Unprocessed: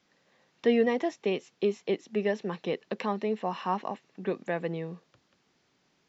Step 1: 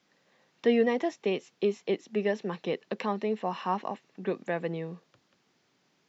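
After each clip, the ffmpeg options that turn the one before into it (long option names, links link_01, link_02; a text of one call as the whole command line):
ffmpeg -i in.wav -af "highpass=98" out.wav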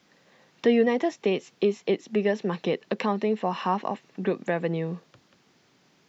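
ffmpeg -i in.wav -filter_complex "[0:a]lowshelf=frequency=170:gain=4.5,asplit=2[link_01][link_02];[link_02]acompressor=threshold=-33dB:ratio=6,volume=2.5dB[link_03];[link_01][link_03]amix=inputs=2:normalize=0" out.wav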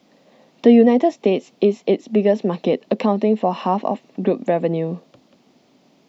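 ffmpeg -i in.wav -af "equalizer=frequency=100:width_type=o:width=0.67:gain=-5,equalizer=frequency=250:width_type=o:width=0.67:gain=9,equalizer=frequency=630:width_type=o:width=0.67:gain=8,equalizer=frequency=1600:width_type=o:width=0.67:gain=-8,equalizer=frequency=6300:width_type=o:width=0.67:gain=-3,volume=3.5dB" out.wav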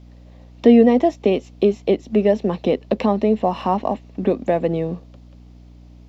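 ffmpeg -i in.wav -filter_complex "[0:a]aeval=exprs='val(0)+0.01*(sin(2*PI*60*n/s)+sin(2*PI*2*60*n/s)/2+sin(2*PI*3*60*n/s)/3+sin(2*PI*4*60*n/s)/4+sin(2*PI*5*60*n/s)/5)':channel_layout=same,asplit=2[link_01][link_02];[link_02]aeval=exprs='sgn(val(0))*max(abs(val(0))-0.0133,0)':channel_layout=same,volume=-10dB[link_03];[link_01][link_03]amix=inputs=2:normalize=0,volume=-2.5dB" out.wav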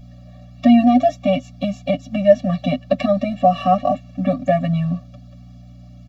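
ffmpeg -i in.wav -af "aecho=1:1:6.9:0.71,afftfilt=real='re*eq(mod(floor(b*sr/1024/270),2),0)':imag='im*eq(mod(floor(b*sr/1024/270),2),0)':win_size=1024:overlap=0.75,volume=4dB" out.wav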